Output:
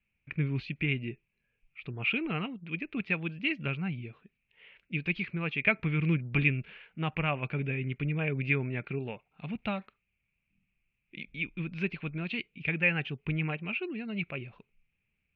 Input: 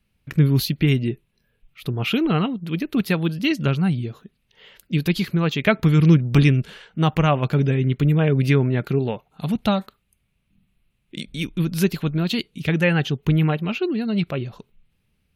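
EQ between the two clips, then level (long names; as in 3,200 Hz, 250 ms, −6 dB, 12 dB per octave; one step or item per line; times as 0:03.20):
transistor ladder low-pass 2,600 Hz, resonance 75%
−2.0 dB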